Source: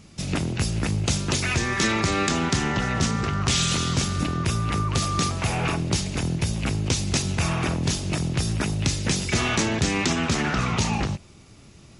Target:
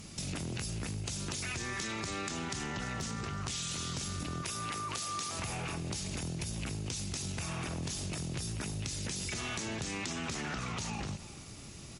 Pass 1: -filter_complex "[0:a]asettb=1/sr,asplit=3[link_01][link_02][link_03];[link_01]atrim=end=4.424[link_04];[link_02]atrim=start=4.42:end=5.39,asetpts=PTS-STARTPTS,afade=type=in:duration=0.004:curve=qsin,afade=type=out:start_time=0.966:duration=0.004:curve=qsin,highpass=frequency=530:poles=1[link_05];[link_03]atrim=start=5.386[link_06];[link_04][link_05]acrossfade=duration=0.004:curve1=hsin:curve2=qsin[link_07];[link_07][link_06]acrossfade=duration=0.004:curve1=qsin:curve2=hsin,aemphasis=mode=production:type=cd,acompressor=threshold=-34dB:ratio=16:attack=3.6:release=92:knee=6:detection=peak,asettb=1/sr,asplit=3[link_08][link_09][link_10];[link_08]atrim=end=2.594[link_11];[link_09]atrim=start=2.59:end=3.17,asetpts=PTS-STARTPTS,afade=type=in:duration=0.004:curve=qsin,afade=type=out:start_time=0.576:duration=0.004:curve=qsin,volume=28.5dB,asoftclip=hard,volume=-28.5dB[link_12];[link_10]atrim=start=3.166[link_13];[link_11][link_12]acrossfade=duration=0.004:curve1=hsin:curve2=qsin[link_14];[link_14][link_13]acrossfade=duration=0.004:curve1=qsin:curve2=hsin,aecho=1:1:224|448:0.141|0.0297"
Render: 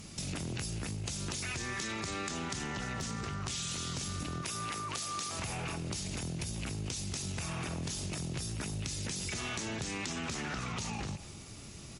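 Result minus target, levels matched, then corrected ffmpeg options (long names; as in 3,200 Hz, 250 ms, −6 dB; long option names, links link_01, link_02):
echo 120 ms early
-filter_complex "[0:a]asettb=1/sr,asplit=3[link_01][link_02][link_03];[link_01]atrim=end=4.424[link_04];[link_02]atrim=start=4.42:end=5.39,asetpts=PTS-STARTPTS,afade=type=in:duration=0.004:curve=qsin,afade=type=out:start_time=0.966:duration=0.004:curve=qsin,highpass=frequency=530:poles=1[link_05];[link_03]atrim=start=5.386[link_06];[link_04][link_05]acrossfade=duration=0.004:curve1=hsin:curve2=qsin[link_07];[link_07][link_06]acrossfade=duration=0.004:curve1=qsin:curve2=hsin,aemphasis=mode=production:type=cd,acompressor=threshold=-34dB:ratio=16:attack=3.6:release=92:knee=6:detection=peak,asettb=1/sr,asplit=3[link_08][link_09][link_10];[link_08]atrim=end=2.594[link_11];[link_09]atrim=start=2.59:end=3.17,asetpts=PTS-STARTPTS,afade=type=in:duration=0.004:curve=qsin,afade=type=out:start_time=0.576:duration=0.004:curve=qsin,volume=28.5dB,asoftclip=hard,volume=-28.5dB[link_12];[link_10]atrim=start=3.166[link_13];[link_11][link_12]acrossfade=duration=0.004:curve1=hsin:curve2=qsin[link_14];[link_14][link_13]acrossfade=duration=0.004:curve1=qsin:curve2=hsin,aecho=1:1:344|688:0.141|0.0297"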